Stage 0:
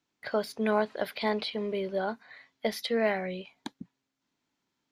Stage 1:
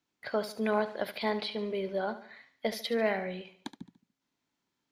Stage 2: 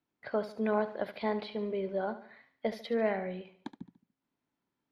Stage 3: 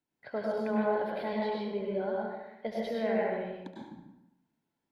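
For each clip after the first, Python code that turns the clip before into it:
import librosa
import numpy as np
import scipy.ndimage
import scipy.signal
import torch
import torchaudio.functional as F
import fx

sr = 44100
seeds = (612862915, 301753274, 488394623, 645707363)

y1 = fx.echo_feedback(x, sr, ms=72, feedback_pct=43, wet_db=-13.0)
y1 = F.gain(torch.from_numpy(y1), -2.0).numpy()
y2 = fx.lowpass(y1, sr, hz=1300.0, slope=6)
y3 = fx.notch(y2, sr, hz=1200.0, q=6.6)
y3 = fx.rev_plate(y3, sr, seeds[0], rt60_s=0.96, hf_ratio=0.65, predelay_ms=90, drr_db=-3.5)
y3 = F.gain(torch.from_numpy(y3), -4.0).numpy()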